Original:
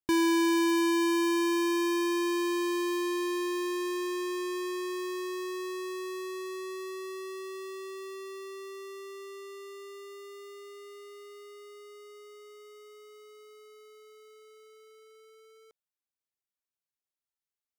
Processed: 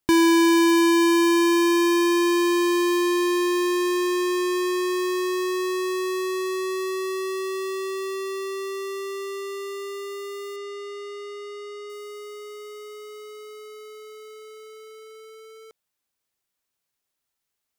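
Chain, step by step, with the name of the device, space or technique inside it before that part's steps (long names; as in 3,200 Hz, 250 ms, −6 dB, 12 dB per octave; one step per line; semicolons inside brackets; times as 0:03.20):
0:10.56–0:11.90: low-pass filter 6,300 Hz 12 dB per octave
parallel compression (in parallel at −1 dB: downward compressor, threshold −40 dBFS, peak gain reduction 13.5 dB)
on the sum: level +6.5 dB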